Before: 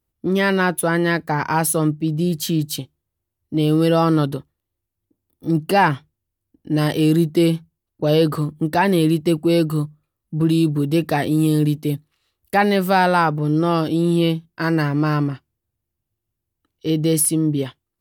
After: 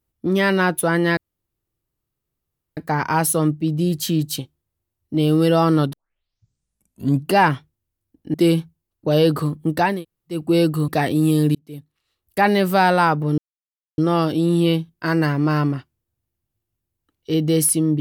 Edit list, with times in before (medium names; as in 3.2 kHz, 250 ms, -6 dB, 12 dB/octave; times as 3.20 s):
1.17 s: insert room tone 1.60 s
4.33 s: tape start 1.38 s
6.74–7.30 s: delete
8.89–9.34 s: room tone, crossfade 0.24 s
9.84–11.04 s: delete
11.71–12.62 s: fade in
13.54 s: insert silence 0.60 s